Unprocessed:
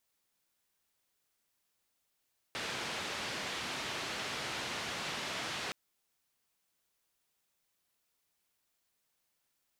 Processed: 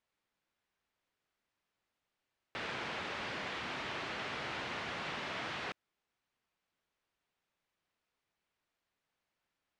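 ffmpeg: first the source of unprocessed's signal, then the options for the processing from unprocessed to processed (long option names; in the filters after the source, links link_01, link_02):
-f lavfi -i "anoisesrc=color=white:duration=3.17:sample_rate=44100:seed=1,highpass=frequency=90,lowpass=frequency=3700,volume=-26.7dB"
-af "lowpass=2400,crystalizer=i=1.5:c=0"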